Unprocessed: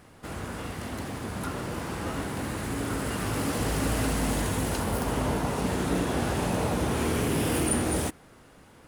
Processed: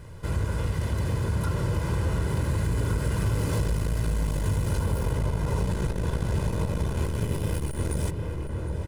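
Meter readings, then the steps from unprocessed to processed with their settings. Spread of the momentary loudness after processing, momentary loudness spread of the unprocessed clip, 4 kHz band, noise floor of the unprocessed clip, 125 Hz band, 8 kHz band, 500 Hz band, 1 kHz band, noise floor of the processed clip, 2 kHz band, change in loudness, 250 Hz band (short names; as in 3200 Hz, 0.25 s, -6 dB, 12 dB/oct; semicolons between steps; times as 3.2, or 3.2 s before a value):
3 LU, 9 LU, -5.0 dB, -54 dBFS, +6.5 dB, -7.0 dB, -2.5 dB, -5.5 dB, -32 dBFS, -4.5 dB, +1.0 dB, -3.5 dB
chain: one-sided fold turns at -23.5 dBFS; in parallel at -2.5 dB: limiter -27 dBFS, peak gain reduction 10 dB; on the sum: tone controls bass +12 dB, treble +7 dB; comb 2 ms, depth 70%; outdoor echo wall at 130 m, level -9 dB; compressor, threshold -16 dBFS, peak gain reduction 7.5 dB; high shelf 4500 Hz -9 dB; core saturation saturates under 110 Hz; gain -4 dB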